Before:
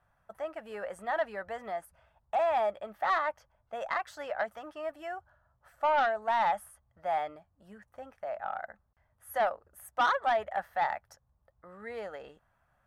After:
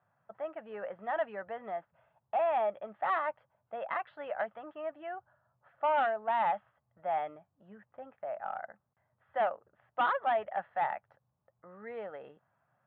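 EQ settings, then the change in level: Chebyshev band-pass 120–3400 Hz, order 3; dynamic EQ 2800 Hz, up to +5 dB, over -53 dBFS, Q 2.9; air absorption 430 m; 0.0 dB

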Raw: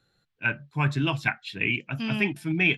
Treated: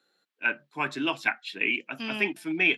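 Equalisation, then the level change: HPF 260 Hz 24 dB/oct; 0.0 dB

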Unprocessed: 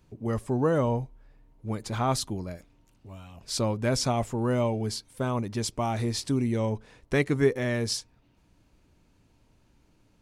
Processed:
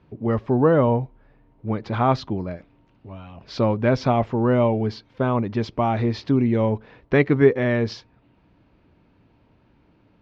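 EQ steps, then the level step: running mean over 5 samples; HPF 110 Hz 6 dB/oct; air absorption 230 m; +8.5 dB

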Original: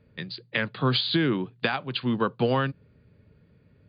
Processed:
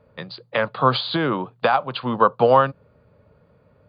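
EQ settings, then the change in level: band shelf 810 Hz +13 dB; 0.0 dB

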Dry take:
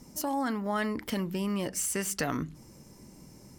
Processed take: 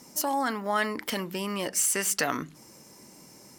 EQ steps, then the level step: HPF 600 Hz 6 dB/oct; +6.5 dB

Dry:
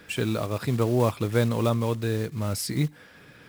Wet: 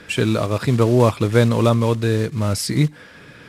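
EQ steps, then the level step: Bessel low-pass 9900 Hz, order 4; notch 770 Hz, Q 15; +8.0 dB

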